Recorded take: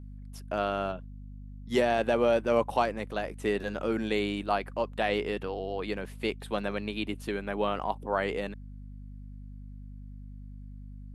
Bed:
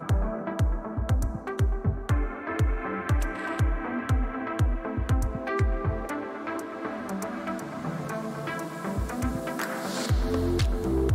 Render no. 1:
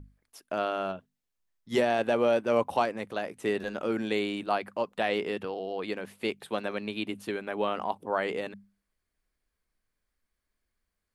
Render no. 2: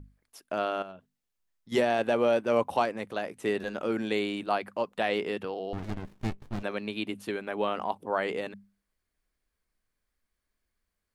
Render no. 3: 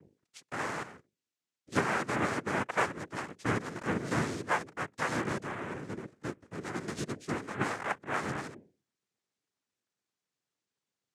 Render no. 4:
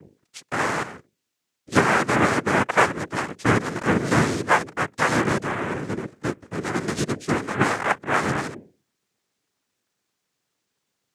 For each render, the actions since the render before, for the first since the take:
mains-hum notches 50/100/150/200/250 Hz
0:00.82–0:01.72: downward compressor 2 to 1, threshold −49 dBFS; 0:05.73–0:06.63: windowed peak hold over 65 samples
phaser with its sweep stopped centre 380 Hz, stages 8; cochlear-implant simulation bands 3
level +11.5 dB; brickwall limiter −3 dBFS, peak gain reduction 1 dB

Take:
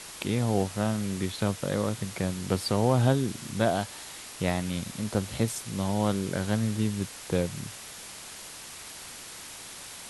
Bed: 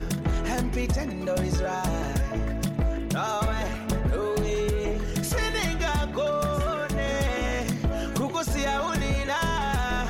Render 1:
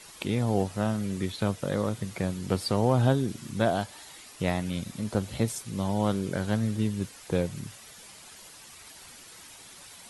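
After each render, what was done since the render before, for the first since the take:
broadband denoise 9 dB, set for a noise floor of −44 dBFS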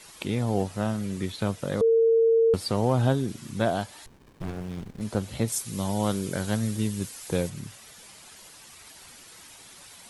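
0:01.81–0:02.54: beep over 455 Hz −16.5 dBFS
0:04.06–0:05.01: windowed peak hold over 65 samples
0:05.52–0:07.50: high-shelf EQ 5,300 Hz +11 dB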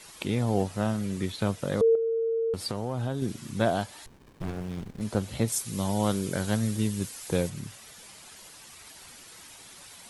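0:01.95–0:03.22: downward compressor 4 to 1, threshold −27 dBFS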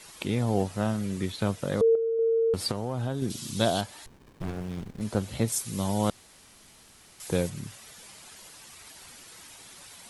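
0:02.19–0:02.72: clip gain +3.5 dB
0:03.30–0:03.81: high shelf with overshoot 2,700 Hz +8.5 dB, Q 1.5
0:06.10–0:07.20: fill with room tone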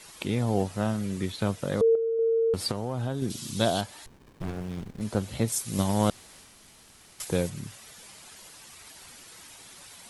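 0:05.68–0:07.25: transient designer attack +9 dB, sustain +4 dB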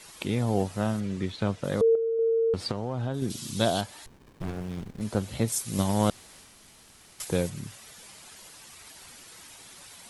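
0:01.00–0:01.64: high-frequency loss of the air 78 metres
0:02.31–0:03.14: high-frequency loss of the air 76 metres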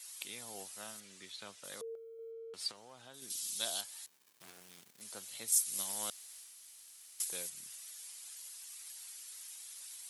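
high-pass filter 93 Hz
first difference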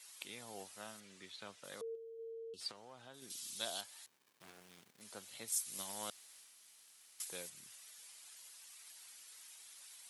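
0:01.95–0:02.61: gain on a spectral selection 490–2,500 Hz −26 dB
high-shelf EQ 4,300 Hz −9.5 dB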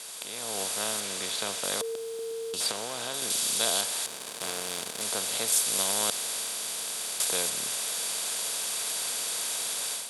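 compressor on every frequency bin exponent 0.4
automatic gain control gain up to 10 dB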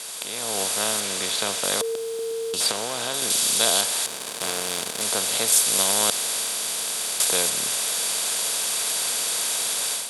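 level +6.5 dB

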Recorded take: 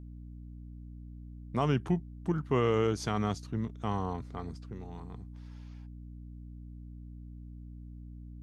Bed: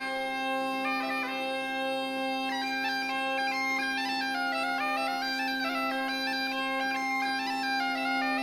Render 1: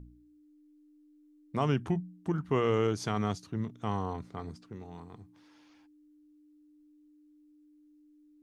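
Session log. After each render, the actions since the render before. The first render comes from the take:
hum removal 60 Hz, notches 4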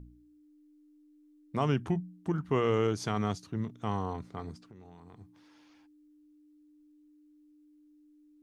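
0:04.65–0:05.21: downward compressor 12 to 1, threshold −47 dBFS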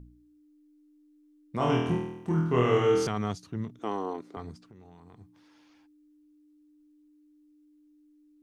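0:01.57–0:03.07: flutter between parallel walls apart 4.2 metres, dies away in 0.87 s
0:03.79–0:04.37: high-pass with resonance 330 Hz, resonance Q 2.5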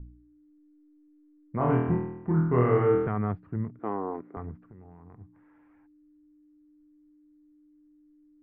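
Butterworth low-pass 2,000 Hz 36 dB per octave
low-shelf EQ 99 Hz +9.5 dB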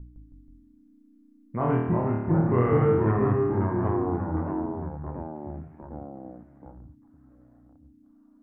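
delay with pitch and tempo change per echo 160 ms, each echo −2 semitones, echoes 3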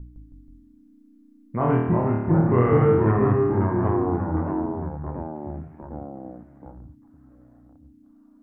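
level +3.5 dB

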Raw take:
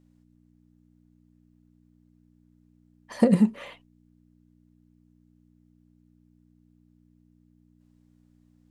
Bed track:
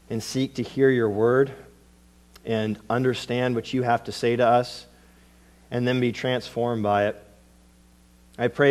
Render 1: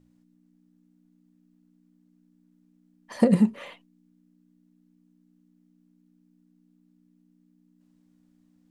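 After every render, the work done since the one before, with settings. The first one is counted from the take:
hum removal 60 Hz, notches 2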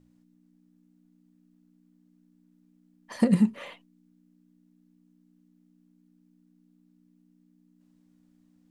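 0:03.16–0:03.56: parametric band 550 Hz −7.5 dB 1.5 octaves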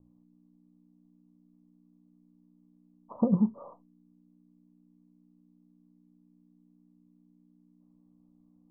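Butterworth low-pass 1,200 Hz 96 dB per octave
dynamic equaliser 260 Hz, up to −4 dB, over −44 dBFS, Q 0.76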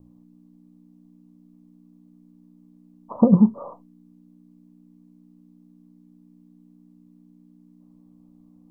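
level +10 dB

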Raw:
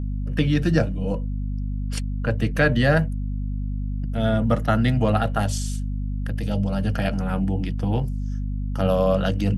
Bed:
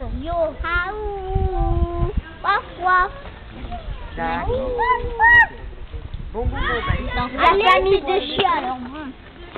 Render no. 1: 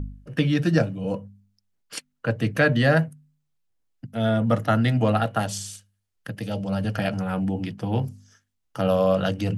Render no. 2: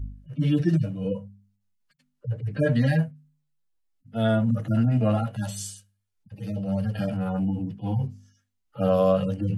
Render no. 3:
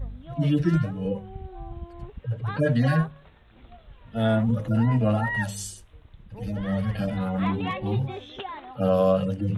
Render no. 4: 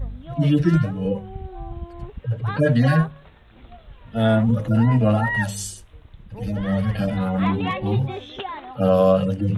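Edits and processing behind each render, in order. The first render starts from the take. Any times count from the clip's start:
hum removal 50 Hz, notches 5
harmonic-percussive split with one part muted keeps harmonic; dynamic equaliser 9,300 Hz, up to +6 dB, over −57 dBFS, Q 0.76
mix in bed −18 dB
level +4.5 dB

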